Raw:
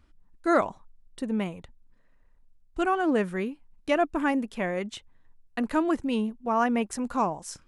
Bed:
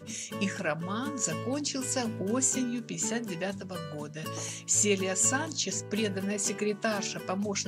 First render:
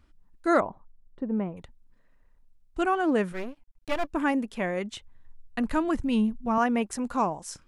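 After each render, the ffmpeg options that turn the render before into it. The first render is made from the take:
-filter_complex "[0:a]asettb=1/sr,asplit=3[s0][s1][s2];[s0]atrim=end=0.604[s3];[s1]atrim=start=0.6:end=1.57,asetpts=PTS-STARTPTS,afade=t=in:d=0.004:c=qsin,afade=t=out:st=0.966:d=0.004:c=qsin,lowpass=1100[s4];[s2]atrim=start=1.566[s5];[s3][s4]acrossfade=d=0.004:c1=hsin:c2=qsin[s6];[s6][s5]acrossfade=d=0.004:c1=qsin:c2=hsin,asettb=1/sr,asplit=3[s7][s8][s9];[s7]atrim=end=3.324[s10];[s8]atrim=start=3.32:end=4.09,asetpts=PTS-STARTPTS,afade=t=in:d=0.004:c=qsin,afade=t=out:st=0.766:d=0.004:c=qsin,aeval=exprs='max(val(0),0)':c=same[s11];[s9]atrim=start=4.086[s12];[s10][s11]acrossfade=d=0.004:c1=hsin:c2=qsin[s13];[s13][s12]acrossfade=d=0.004:c1=qsin:c2=hsin,asettb=1/sr,asplit=3[s14][s15][s16];[s14]atrim=end=4.804[s17];[s15]atrim=start=4.8:end=6.58,asetpts=PTS-STARTPTS,afade=t=in:d=0.004:c=qsin,afade=t=out:st=1.776:d=0.004:c=qsin,asubboost=boost=10:cutoff=170[s18];[s16]atrim=start=6.576[s19];[s17][s18]acrossfade=d=0.004:c1=hsin:c2=qsin[s20];[s20][s19]acrossfade=d=0.004:c1=qsin:c2=hsin"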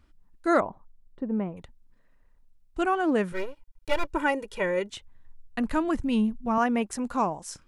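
-filter_complex "[0:a]asettb=1/sr,asplit=3[s0][s1][s2];[s0]atrim=end=3.324[s3];[s1]atrim=start=3.32:end=4.9,asetpts=PTS-STARTPTS,afade=t=in:d=0.004:c=qsin,afade=t=out:st=1.576:d=0.004:c=qsin,aecho=1:1:2.1:0.88,atrim=end_sample=69678[s4];[s2]atrim=start=4.896[s5];[s3][s4]acrossfade=d=0.004:c1=hsin:c2=qsin[s6];[s6][s5]acrossfade=d=0.004:c1=qsin:c2=hsin"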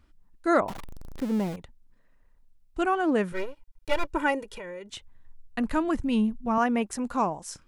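-filter_complex "[0:a]asettb=1/sr,asplit=3[s0][s1][s2];[s0]atrim=end=0.684[s3];[s1]atrim=start=0.68:end=1.56,asetpts=PTS-STARTPTS,afade=t=in:d=0.004:c=qsin,afade=t=out:st=0.876:d=0.004:c=qsin,aeval=exprs='val(0)+0.5*0.0224*sgn(val(0))':c=same[s4];[s2]atrim=start=1.556[s5];[s3][s4]acrossfade=d=0.004:c1=hsin:c2=qsin[s6];[s6][s5]acrossfade=d=0.004:c1=qsin:c2=hsin,asettb=1/sr,asplit=3[s7][s8][s9];[s7]atrim=end=4.434[s10];[s8]atrim=start=4.43:end=4.92,asetpts=PTS-STARTPTS,afade=t=in:d=0.004:c=qsin,afade=t=out:st=0.486:d=0.004:c=qsin,acompressor=threshold=0.0158:ratio=8:attack=3.2:release=140:knee=1:detection=peak[s11];[s9]atrim=start=4.916[s12];[s10][s11]acrossfade=d=0.004:c1=hsin:c2=qsin[s13];[s13][s12]acrossfade=d=0.004:c1=qsin:c2=hsin"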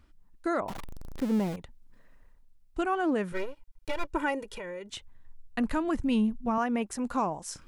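-af "areverse,acompressor=mode=upward:threshold=0.00501:ratio=2.5,areverse,alimiter=limit=0.106:level=0:latency=1:release=161"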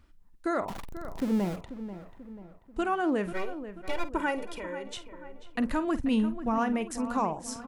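-filter_complex "[0:a]asplit=2[s0][s1];[s1]adelay=49,volume=0.2[s2];[s0][s2]amix=inputs=2:normalize=0,asplit=2[s3][s4];[s4]adelay=488,lowpass=f=2400:p=1,volume=0.251,asplit=2[s5][s6];[s6]adelay=488,lowpass=f=2400:p=1,volume=0.49,asplit=2[s7][s8];[s8]adelay=488,lowpass=f=2400:p=1,volume=0.49,asplit=2[s9][s10];[s10]adelay=488,lowpass=f=2400:p=1,volume=0.49,asplit=2[s11][s12];[s12]adelay=488,lowpass=f=2400:p=1,volume=0.49[s13];[s3][s5][s7][s9][s11][s13]amix=inputs=6:normalize=0"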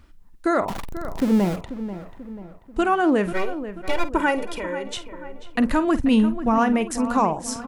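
-af "volume=2.66"

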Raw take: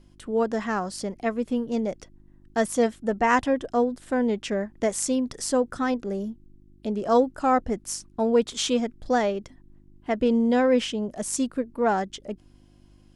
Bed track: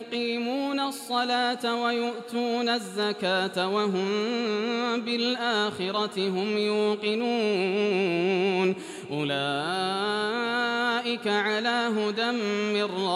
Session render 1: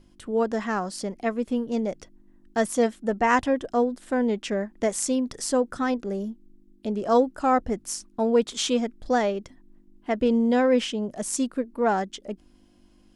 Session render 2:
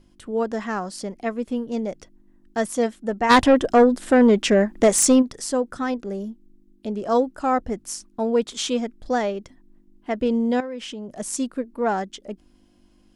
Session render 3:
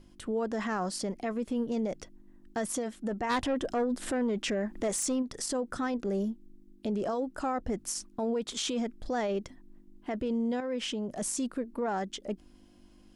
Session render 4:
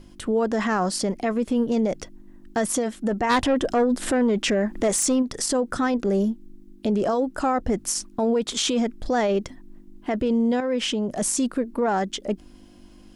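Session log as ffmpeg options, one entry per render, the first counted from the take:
-af "bandreject=f=50:t=h:w=4,bandreject=f=100:t=h:w=4,bandreject=f=150:t=h:w=4"
-filter_complex "[0:a]asplit=3[s0][s1][s2];[s0]afade=t=out:st=3.29:d=0.02[s3];[s1]aeval=exprs='0.376*sin(PI/2*2.24*val(0)/0.376)':c=same,afade=t=in:st=3.29:d=0.02,afade=t=out:st=5.21:d=0.02[s4];[s2]afade=t=in:st=5.21:d=0.02[s5];[s3][s4][s5]amix=inputs=3:normalize=0,asettb=1/sr,asplit=3[s6][s7][s8];[s6]atrim=end=10.604[s9];[s7]atrim=start=10.6:end=11.2,asetpts=PTS-STARTPTS,afade=t=in:d=0.004:c=qsin,afade=t=out:st=0.596:d=0.004:c=qsin,acompressor=threshold=0.0282:ratio=4:attack=3.2:release=140:knee=1:detection=peak[s10];[s8]atrim=start=11.196[s11];[s9][s10]acrossfade=d=0.004:c1=hsin:c2=qsin[s12];[s12][s11]acrossfade=d=0.004:c1=qsin:c2=hsin"
-af "acompressor=threshold=0.0794:ratio=6,alimiter=limit=0.0631:level=0:latency=1:release=19"
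-af "volume=2.82"

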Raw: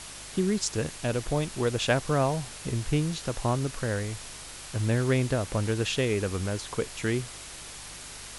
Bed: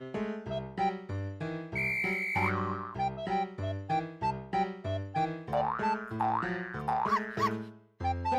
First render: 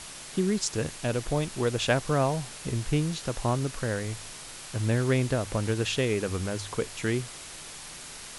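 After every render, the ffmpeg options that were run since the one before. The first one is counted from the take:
-af "bandreject=f=50:t=h:w=4,bandreject=f=100:t=h:w=4"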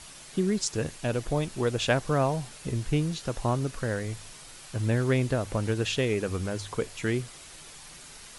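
-af "afftdn=nr=6:nf=-43"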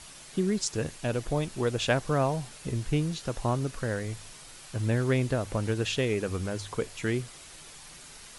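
-af "volume=0.891"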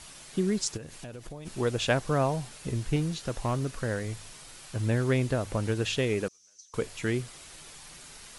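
-filter_complex "[0:a]asplit=3[s0][s1][s2];[s0]afade=t=out:st=0.76:d=0.02[s3];[s1]acompressor=threshold=0.0141:ratio=16:attack=3.2:release=140:knee=1:detection=peak,afade=t=in:st=0.76:d=0.02,afade=t=out:st=1.45:d=0.02[s4];[s2]afade=t=in:st=1.45:d=0.02[s5];[s3][s4][s5]amix=inputs=3:normalize=0,asettb=1/sr,asplit=3[s6][s7][s8];[s6]atrim=end=2.964[s9];[s7]atrim=start=2.96:end=3.75,asetpts=PTS-STARTPTS,afade=t=in:d=0.004:c=qsin,afade=t=out:st=0.786:d=0.004:c=qsin,asoftclip=type=hard:threshold=0.075[s10];[s8]atrim=start=3.746[s11];[s9][s10]acrossfade=d=0.004:c1=hsin:c2=qsin[s12];[s12][s11]acrossfade=d=0.004:c1=qsin:c2=hsin,asettb=1/sr,asplit=3[s13][s14][s15];[s13]atrim=end=6.284[s16];[s14]atrim=start=6.28:end=6.74,asetpts=PTS-STARTPTS,afade=t=in:d=0.004:c=qsin,afade=t=out:st=0.456:d=0.004:c=qsin,bandpass=f=6000:t=q:w=12[s17];[s15]atrim=start=6.736[s18];[s16][s17]acrossfade=d=0.004:c1=hsin:c2=qsin[s19];[s19][s18]acrossfade=d=0.004:c1=qsin:c2=hsin"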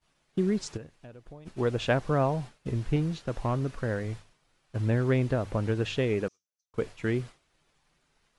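-af "agate=range=0.0224:threshold=0.0178:ratio=3:detection=peak,aemphasis=mode=reproduction:type=75fm"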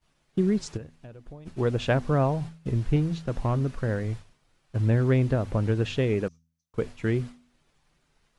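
-af "lowshelf=f=270:g=5.5,bandreject=f=81.41:t=h:w=4,bandreject=f=162.82:t=h:w=4,bandreject=f=244.23:t=h:w=4"

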